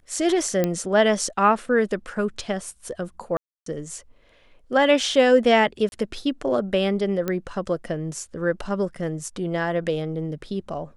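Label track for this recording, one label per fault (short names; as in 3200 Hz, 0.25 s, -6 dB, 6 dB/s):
0.640000	0.640000	pop -9 dBFS
3.370000	3.660000	gap 0.293 s
5.890000	5.920000	gap 31 ms
7.280000	7.280000	pop -12 dBFS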